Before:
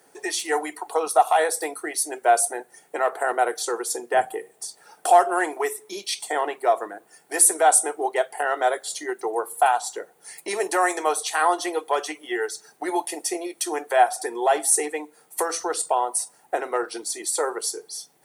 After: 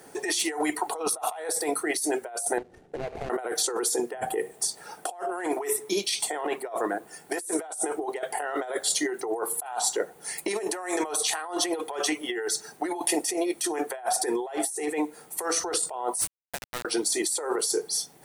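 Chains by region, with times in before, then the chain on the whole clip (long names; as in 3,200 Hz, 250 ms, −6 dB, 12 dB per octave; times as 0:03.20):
0:02.58–0:03.30: running median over 41 samples + low-pass filter 9,600 Hz + downward compressor 4 to 1, threshold −41 dBFS
0:16.21–0:16.85: first difference + hum removal 373.2 Hz, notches 34 + bit-depth reduction 6 bits, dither none
whole clip: low-shelf EQ 280 Hz +8.5 dB; compressor whose output falls as the input rises −30 dBFS, ratio −1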